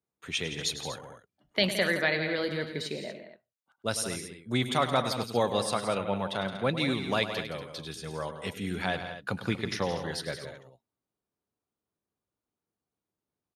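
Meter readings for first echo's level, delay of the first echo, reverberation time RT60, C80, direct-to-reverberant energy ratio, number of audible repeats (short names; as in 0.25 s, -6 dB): -12.0 dB, 0.102 s, none, none, none, 3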